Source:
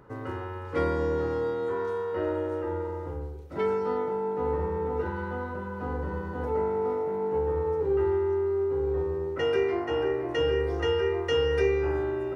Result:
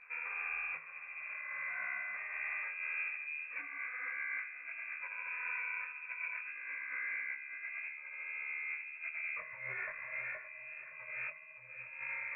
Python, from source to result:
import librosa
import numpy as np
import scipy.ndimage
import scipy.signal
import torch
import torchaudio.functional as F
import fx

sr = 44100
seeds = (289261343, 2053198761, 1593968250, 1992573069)

p1 = fx.curve_eq(x, sr, hz=(180.0, 300.0, 710.0), db=(0, -16, -4))
p2 = fx.over_compress(p1, sr, threshold_db=-38.0, ratio=-0.5)
p3 = fx.air_absorb(p2, sr, metres=380.0)
p4 = p3 + fx.echo_single(p3, sr, ms=568, db=-12.5, dry=0)
p5 = fx.freq_invert(p4, sr, carrier_hz=2500)
y = fx.detune_double(p5, sr, cents=57)